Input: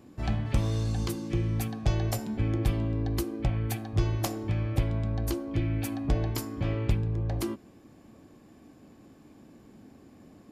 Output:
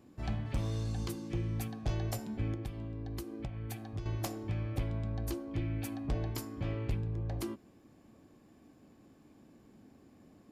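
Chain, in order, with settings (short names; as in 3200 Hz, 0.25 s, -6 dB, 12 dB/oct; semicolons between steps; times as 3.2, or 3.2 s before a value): 2.53–4.06 compressor 6:1, threshold -30 dBFS, peak gain reduction 10.5 dB; hard clip -20 dBFS, distortion -19 dB; gain -6.5 dB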